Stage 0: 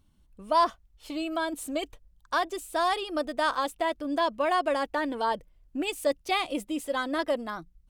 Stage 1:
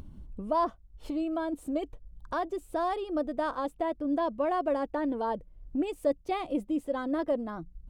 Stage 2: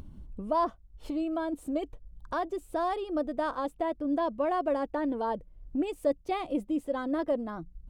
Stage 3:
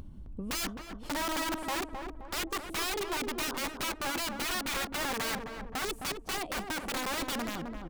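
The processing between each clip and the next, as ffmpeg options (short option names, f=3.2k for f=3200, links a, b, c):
-af "tiltshelf=f=1.1k:g=10,acompressor=mode=upward:threshold=-25dB:ratio=2.5,volume=-6.5dB"
-af anull
-filter_complex "[0:a]aeval=exprs='(mod(28.2*val(0)+1,2)-1)/28.2':c=same,asplit=2[a][b];[b]adelay=262,lowpass=f=1.1k:p=1,volume=-4dB,asplit=2[c][d];[d]adelay=262,lowpass=f=1.1k:p=1,volume=0.5,asplit=2[e][f];[f]adelay=262,lowpass=f=1.1k:p=1,volume=0.5,asplit=2[g][h];[h]adelay=262,lowpass=f=1.1k:p=1,volume=0.5,asplit=2[i][j];[j]adelay=262,lowpass=f=1.1k:p=1,volume=0.5,asplit=2[k][l];[l]adelay=262,lowpass=f=1.1k:p=1,volume=0.5[m];[c][e][g][i][k][m]amix=inputs=6:normalize=0[n];[a][n]amix=inputs=2:normalize=0"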